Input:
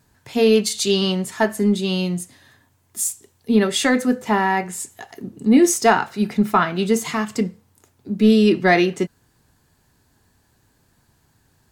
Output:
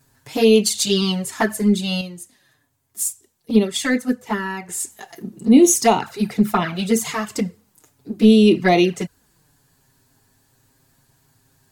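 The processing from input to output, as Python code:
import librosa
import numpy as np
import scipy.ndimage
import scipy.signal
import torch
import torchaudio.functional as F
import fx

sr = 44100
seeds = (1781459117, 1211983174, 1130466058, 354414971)

y = fx.high_shelf(x, sr, hz=6300.0, db=7.0)
y = fx.env_flanger(y, sr, rest_ms=7.6, full_db=-11.0)
y = fx.upward_expand(y, sr, threshold_db=-28.0, expansion=1.5, at=(2.01, 4.69))
y = y * 10.0 ** (2.5 / 20.0)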